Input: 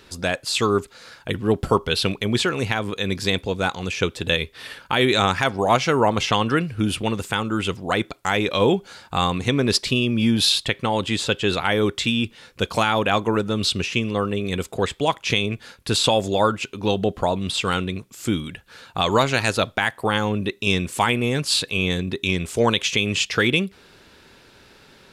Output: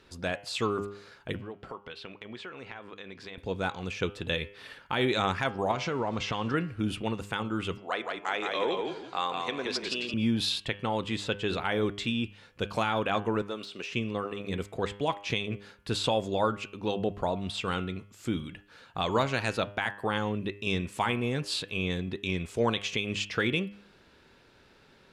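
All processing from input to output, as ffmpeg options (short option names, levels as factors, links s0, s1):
-filter_complex "[0:a]asettb=1/sr,asplit=3[s0][s1][s2];[s0]atrim=end=1.414[s3];[s1]atrim=start=1.41:end=3.38,asetpts=PTS-STARTPTS,afade=t=in:d=0.004:c=qsin,afade=t=out:st=1.966:d=0.004:c=qsin,lowpass=2200,aemphasis=mode=production:type=riaa,acompressor=threshold=0.0251:ratio=3:attack=3.2:release=140:knee=1:detection=peak[s4];[s2]atrim=start=3.376[s5];[s3][s4]acrossfade=d=0.004:c1=hsin:c2=qsin[s6];[s6][s5]acrossfade=d=0.004:c1=qsin:c2=hsin,asettb=1/sr,asplit=3[s7][s8][s9];[s7]atrim=end=5.714[s10];[s8]atrim=start=5.71:end=6.54,asetpts=PTS-STARTPTS,afade=t=in:d=0.004:c=qsin,afade=t=out:st=0.826:d=0.004:c=qsin,aeval=exprs='val(0)+0.5*0.0237*sgn(val(0))':c=same,lowpass=f=7700:w=0.5412,lowpass=f=7700:w=1.3066,acompressor=threshold=0.126:ratio=5:attack=3.2:release=140:knee=1:detection=peak[s11];[s9]atrim=start=6.536[s12];[s10][s11]acrossfade=d=0.004:c1=hsin:c2=qsin[s13];[s13][s12]acrossfade=d=0.004:c1=qsin:c2=hsin,asettb=1/sr,asplit=3[s14][s15][s16];[s14]atrim=end=7.784[s17];[s15]atrim=start=7.78:end=10.14,asetpts=PTS-STARTPTS,afade=t=in:d=0.004:c=qsin,afade=t=out:st=2.356:d=0.004:c=qsin,highpass=470,lowpass=7700,asplit=5[s18][s19][s20][s21][s22];[s19]adelay=170,afreqshift=-32,volume=0.631[s23];[s20]adelay=340,afreqshift=-64,volume=0.188[s24];[s21]adelay=510,afreqshift=-96,volume=0.0569[s25];[s22]adelay=680,afreqshift=-128,volume=0.017[s26];[s18][s23][s24][s25][s26]amix=inputs=5:normalize=0,atrim=end_sample=104076[s27];[s16]atrim=start=10.136[s28];[s17][s27]acrossfade=d=0.004:c1=hsin:c2=qsin[s29];[s29][s28]acrossfade=d=0.004:c1=qsin:c2=hsin,asettb=1/sr,asplit=3[s30][s31][s32];[s30]atrim=end=13.424[s33];[s31]atrim=start=13.42:end=13.91,asetpts=PTS-STARTPTS,afade=t=in:d=0.004:c=qsin,afade=t=out:st=0.486:d=0.004:c=qsin,deesser=0.65,highpass=390[s34];[s32]atrim=start=13.906[s35];[s33][s34]acrossfade=d=0.004:c1=hsin:c2=qsin[s36];[s36][s35]acrossfade=d=0.004:c1=qsin:c2=hsin,aemphasis=mode=reproduction:type=cd,bandreject=f=101.1:t=h:w=4,bandreject=f=202.2:t=h:w=4,bandreject=f=303.3:t=h:w=4,bandreject=f=404.4:t=h:w=4,bandreject=f=505.5:t=h:w=4,bandreject=f=606.6:t=h:w=4,bandreject=f=707.7:t=h:w=4,bandreject=f=808.8:t=h:w=4,bandreject=f=909.9:t=h:w=4,bandreject=f=1011:t=h:w=4,bandreject=f=1112.1:t=h:w=4,bandreject=f=1213.2:t=h:w=4,bandreject=f=1314.3:t=h:w=4,bandreject=f=1415.4:t=h:w=4,bandreject=f=1516.5:t=h:w=4,bandreject=f=1617.6:t=h:w=4,bandreject=f=1718.7:t=h:w=4,bandreject=f=1819.8:t=h:w=4,bandreject=f=1920.9:t=h:w=4,bandreject=f=2022:t=h:w=4,bandreject=f=2123.1:t=h:w=4,bandreject=f=2224.2:t=h:w=4,bandreject=f=2325.3:t=h:w=4,bandreject=f=2426.4:t=h:w=4,bandreject=f=2527.5:t=h:w=4,bandreject=f=2628.6:t=h:w=4,bandreject=f=2729.7:t=h:w=4,bandreject=f=2830.8:t=h:w=4,bandreject=f=2931.9:t=h:w=4,bandreject=f=3033:t=h:w=4,bandreject=f=3134.1:t=h:w=4,bandreject=f=3235.2:t=h:w=4,bandreject=f=3336.3:t=h:w=4,volume=0.398"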